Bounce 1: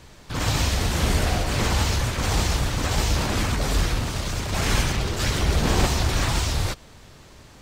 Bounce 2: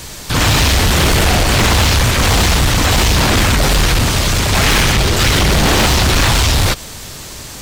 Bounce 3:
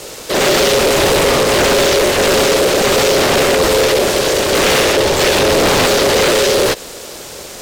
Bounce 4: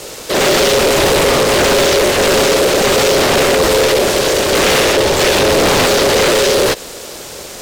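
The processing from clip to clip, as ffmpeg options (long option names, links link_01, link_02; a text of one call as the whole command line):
ffmpeg -i in.wav -filter_complex "[0:a]aeval=exprs='0.376*sin(PI/2*3.16*val(0)/0.376)':channel_layout=same,acrossover=split=3900[link_01][link_02];[link_02]acompressor=threshold=-32dB:ratio=4:attack=1:release=60[link_03];[link_01][link_03]amix=inputs=2:normalize=0,crystalizer=i=3:c=0" out.wav
ffmpeg -i in.wav -af "aeval=exprs='val(0)*sin(2*PI*480*n/s)':channel_layout=same,volume=2.5dB" out.wav
ffmpeg -i in.wav -af "aeval=exprs='clip(val(0),-1,0.376)':channel_layout=same,volume=1dB" out.wav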